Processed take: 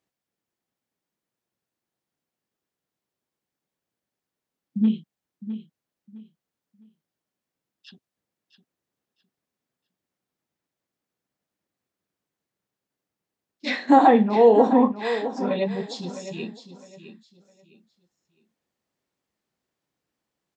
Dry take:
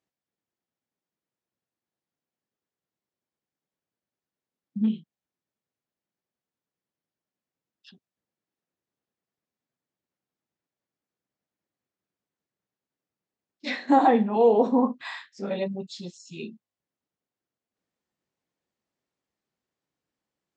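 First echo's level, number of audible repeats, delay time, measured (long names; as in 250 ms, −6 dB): −12.0 dB, 2, 659 ms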